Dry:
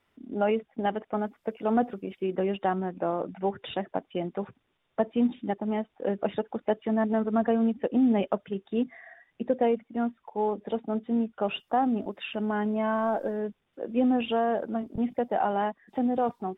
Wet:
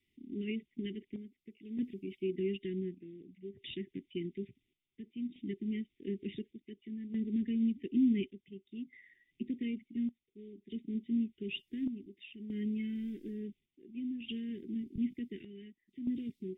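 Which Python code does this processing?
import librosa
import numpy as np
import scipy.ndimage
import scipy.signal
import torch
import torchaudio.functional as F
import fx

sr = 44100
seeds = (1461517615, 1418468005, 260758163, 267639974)

y = scipy.signal.sosfilt(scipy.signal.cheby1(5, 1.0, [390.0, 2000.0], 'bandstop', fs=sr, output='sos'), x)
y = fx.chopper(y, sr, hz=0.56, depth_pct=65, duty_pct=65)
y = y * 10.0 ** (-5.0 / 20.0)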